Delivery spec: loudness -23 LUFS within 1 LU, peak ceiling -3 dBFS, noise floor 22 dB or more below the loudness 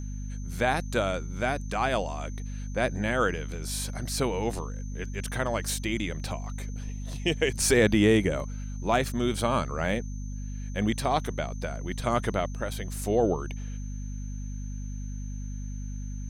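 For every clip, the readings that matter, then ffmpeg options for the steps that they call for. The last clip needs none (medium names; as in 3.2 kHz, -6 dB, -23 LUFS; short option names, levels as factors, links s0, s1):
hum 50 Hz; highest harmonic 250 Hz; hum level -32 dBFS; steady tone 6.2 kHz; tone level -51 dBFS; loudness -29.5 LUFS; peak level -10.0 dBFS; loudness target -23.0 LUFS
-> -af "bandreject=f=50:t=h:w=6,bandreject=f=100:t=h:w=6,bandreject=f=150:t=h:w=6,bandreject=f=200:t=h:w=6,bandreject=f=250:t=h:w=6"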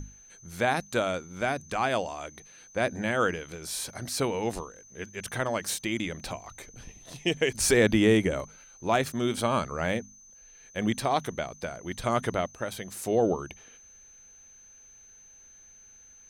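hum not found; steady tone 6.2 kHz; tone level -51 dBFS
-> -af "bandreject=f=6200:w=30"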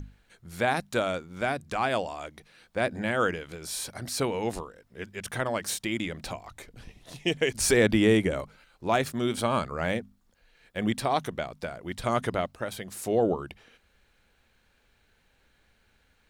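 steady tone not found; loudness -28.5 LUFS; peak level -9.5 dBFS; loudness target -23.0 LUFS
-> -af "volume=1.88"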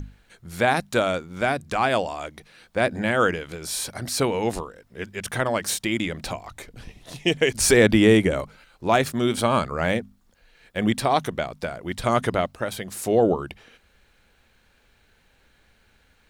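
loudness -23.0 LUFS; peak level -4.0 dBFS; noise floor -62 dBFS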